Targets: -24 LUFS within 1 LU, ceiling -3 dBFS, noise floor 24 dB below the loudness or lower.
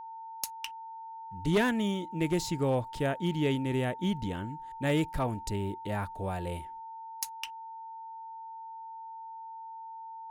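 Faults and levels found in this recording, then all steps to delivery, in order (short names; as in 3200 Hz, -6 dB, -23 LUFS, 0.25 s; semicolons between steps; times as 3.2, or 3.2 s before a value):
clipped 0.2%; flat tops at -20.5 dBFS; steady tone 900 Hz; tone level -41 dBFS; loudness -32.0 LUFS; peak -20.5 dBFS; loudness target -24.0 LUFS
-> clip repair -20.5 dBFS; notch 900 Hz, Q 30; gain +8 dB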